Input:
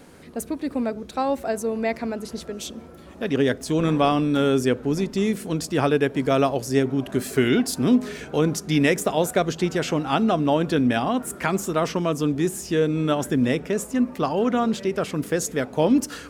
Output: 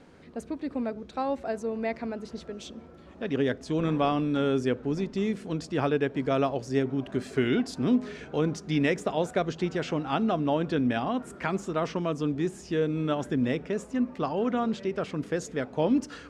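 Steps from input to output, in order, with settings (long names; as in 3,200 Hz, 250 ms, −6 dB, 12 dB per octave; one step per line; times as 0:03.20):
high-frequency loss of the air 99 metres
level −5.5 dB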